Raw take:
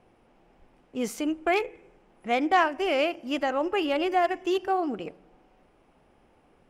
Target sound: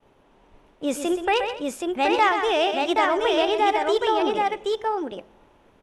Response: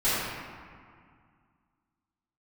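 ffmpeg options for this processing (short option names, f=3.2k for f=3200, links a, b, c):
-filter_complex "[0:a]agate=range=-33dB:threshold=-58dB:ratio=3:detection=peak,aresample=22050,aresample=44100,asetrate=50715,aresample=44100,aecho=1:1:126|212|774:0.335|0.112|0.668,asplit=2[a][b];[b]alimiter=limit=-20dB:level=0:latency=1,volume=-3dB[c];[a][c]amix=inputs=2:normalize=0"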